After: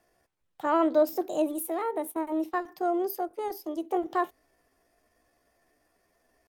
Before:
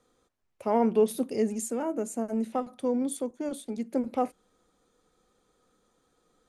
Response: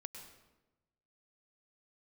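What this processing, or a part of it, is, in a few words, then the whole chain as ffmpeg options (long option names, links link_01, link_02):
chipmunk voice: -filter_complex "[0:a]asetrate=62367,aresample=44100,atempo=0.707107,asplit=3[link_01][link_02][link_03];[link_01]afade=type=out:start_time=2.11:duration=0.02[link_04];[link_02]agate=range=-14dB:threshold=-34dB:ratio=16:detection=peak,afade=type=in:start_time=2.11:duration=0.02,afade=type=out:start_time=2.67:duration=0.02[link_05];[link_03]afade=type=in:start_time=2.67:duration=0.02[link_06];[link_04][link_05][link_06]amix=inputs=3:normalize=0"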